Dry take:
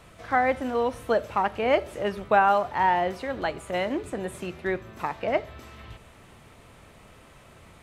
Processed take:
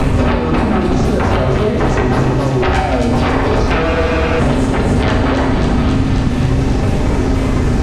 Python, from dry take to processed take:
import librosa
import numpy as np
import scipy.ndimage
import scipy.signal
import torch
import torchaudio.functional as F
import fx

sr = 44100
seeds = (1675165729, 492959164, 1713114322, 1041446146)

p1 = fx.pitch_ramps(x, sr, semitones=-9.5, every_ms=525)
p2 = fx.tilt_eq(p1, sr, slope=-4.0)
p3 = fx.over_compress(p2, sr, threshold_db=-27.0, ratio=-0.5)
p4 = fx.fold_sine(p3, sr, drive_db=19, ceiling_db=-11.0)
p5 = p4 + fx.echo_wet_highpass(p4, sr, ms=270, feedback_pct=67, hz=3400.0, wet_db=-4.0, dry=0)
p6 = fx.rev_fdn(p5, sr, rt60_s=1.2, lf_ratio=1.6, hf_ratio=0.9, size_ms=23.0, drr_db=-2.5)
p7 = fx.spec_freeze(p6, sr, seeds[0], at_s=3.85, hold_s=0.56)
p8 = fx.band_squash(p7, sr, depth_pct=100)
y = F.gain(torch.from_numpy(p8), -5.5).numpy()